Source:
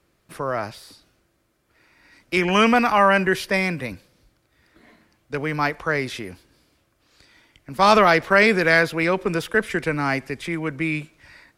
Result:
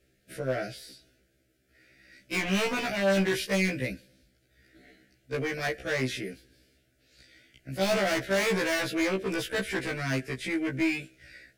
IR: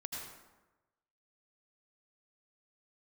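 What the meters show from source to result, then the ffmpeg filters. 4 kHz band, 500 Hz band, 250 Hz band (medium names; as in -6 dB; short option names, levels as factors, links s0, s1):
-5.0 dB, -7.5 dB, -6.0 dB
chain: -af "asuperstop=centerf=1000:order=8:qfactor=1.4,volume=13.3,asoftclip=hard,volume=0.075,afftfilt=real='re*1.73*eq(mod(b,3),0)':imag='im*1.73*eq(mod(b,3),0)':win_size=2048:overlap=0.75"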